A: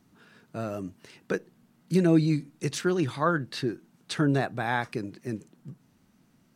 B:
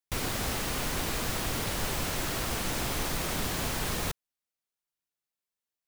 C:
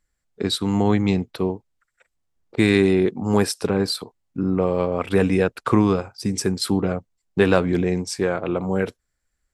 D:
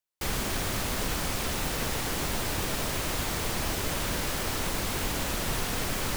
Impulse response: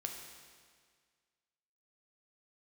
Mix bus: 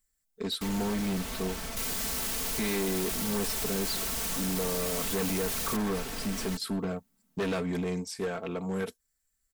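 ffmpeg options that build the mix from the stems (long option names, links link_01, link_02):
-filter_complex "[0:a]lowpass=2100,adelay=1100,volume=-14.5dB[link_01];[1:a]adelay=1650,volume=3dB[link_02];[2:a]acrossover=split=3800[link_03][link_04];[link_04]acompressor=threshold=-43dB:ratio=4:attack=1:release=60[link_05];[link_03][link_05]amix=inputs=2:normalize=0,highshelf=frequency=11000:gain=12,volume=-10.5dB[link_06];[3:a]highshelf=frequency=5000:gain=-10,adelay=400,volume=-8.5dB[link_07];[link_01][link_02][link_07]amix=inputs=3:normalize=0,asoftclip=type=hard:threshold=-20dB,alimiter=level_in=6dB:limit=-24dB:level=0:latency=1,volume=-6dB,volume=0dB[link_08];[link_06][link_08]amix=inputs=2:normalize=0,highshelf=frequency=4500:gain=11.5,aecho=1:1:4.5:0.6,volume=27dB,asoftclip=hard,volume=-27dB"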